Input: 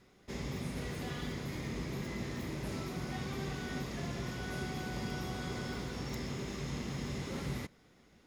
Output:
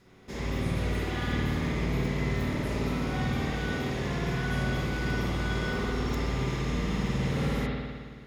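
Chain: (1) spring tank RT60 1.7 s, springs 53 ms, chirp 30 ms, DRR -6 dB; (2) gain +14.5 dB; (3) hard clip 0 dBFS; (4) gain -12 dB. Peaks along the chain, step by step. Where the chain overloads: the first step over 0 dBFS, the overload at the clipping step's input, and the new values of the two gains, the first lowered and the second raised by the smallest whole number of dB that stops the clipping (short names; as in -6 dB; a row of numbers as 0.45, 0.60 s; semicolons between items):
-19.5, -5.0, -5.0, -17.0 dBFS; no overload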